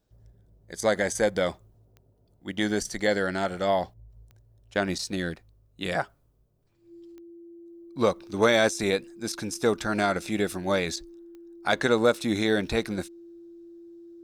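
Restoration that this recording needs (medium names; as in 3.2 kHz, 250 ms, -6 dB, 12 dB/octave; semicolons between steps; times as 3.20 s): clip repair -9 dBFS; de-click; band-stop 340 Hz, Q 30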